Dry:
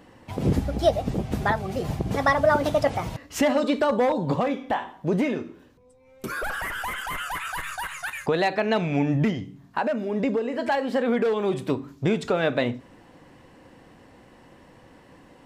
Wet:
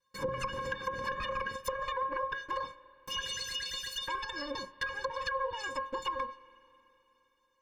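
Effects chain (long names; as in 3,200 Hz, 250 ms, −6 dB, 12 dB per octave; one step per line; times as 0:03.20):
lower of the sound and its delayed copy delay 2.3 ms
noise gate −42 dBFS, range −23 dB
high-pass filter 140 Hz 6 dB per octave
low-shelf EQ 190 Hz +10 dB
stiff-string resonator 260 Hz, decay 0.4 s, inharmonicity 0.008
in parallel at +0.5 dB: downward compressor, threshold −44 dBFS, peak gain reduction 13 dB
on the sum: treble cut that deepens with the level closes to 410 Hz, closed at −31.5 dBFS
change of speed 2.03×
Butterworth band-reject 690 Hz, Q 1.9
spring reverb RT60 3.4 s, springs 31/43/48 ms, chirp 45 ms, DRR 17 dB
level +5.5 dB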